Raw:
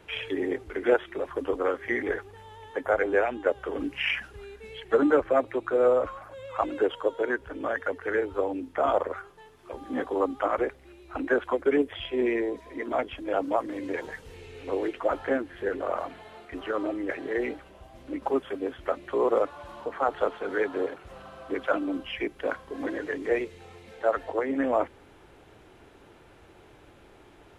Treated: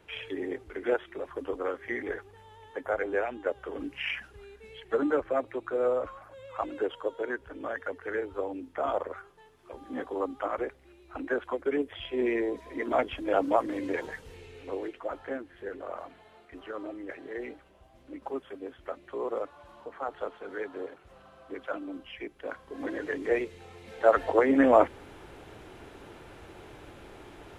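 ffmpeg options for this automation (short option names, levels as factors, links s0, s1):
-af "volume=6.31,afade=t=in:st=11.82:d=1.16:silence=0.446684,afade=t=out:st=13.69:d=1.3:silence=0.298538,afade=t=in:st=22.43:d=0.67:silence=0.398107,afade=t=in:st=23.75:d=0.51:silence=0.473151"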